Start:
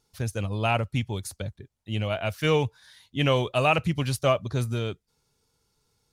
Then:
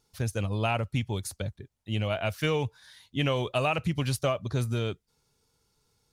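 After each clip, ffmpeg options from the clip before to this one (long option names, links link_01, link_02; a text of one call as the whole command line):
ffmpeg -i in.wav -af "acompressor=threshold=-23dB:ratio=6" out.wav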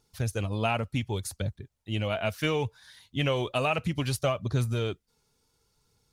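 ffmpeg -i in.wav -af "aphaser=in_gain=1:out_gain=1:delay=4.9:decay=0.28:speed=0.67:type=triangular" out.wav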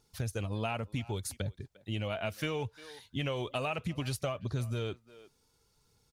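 ffmpeg -i in.wav -filter_complex "[0:a]asplit=2[link_01][link_02];[link_02]adelay=350,highpass=300,lowpass=3400,asoftclip=type=hard:threshold=-22dB,volume=-22dB[link_03];[link_01][link_03]amix=inputs=2:normalize=0,acompressor=threshold=-34dB:ratio=2.5" out.wav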